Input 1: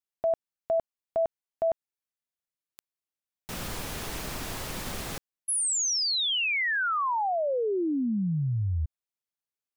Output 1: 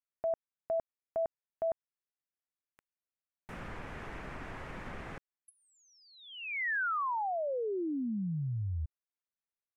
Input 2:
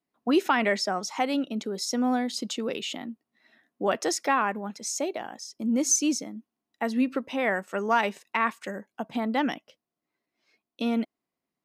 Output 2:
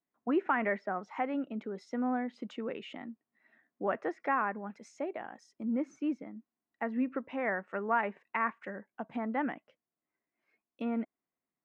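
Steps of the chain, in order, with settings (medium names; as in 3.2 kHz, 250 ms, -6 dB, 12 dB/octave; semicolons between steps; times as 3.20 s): low-pass that closes with the level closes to 2.2 kHz, closed at -24.5 dBFS; resonant high shelf 2.9 kHz -13 dB, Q 1.5; trim -7 dB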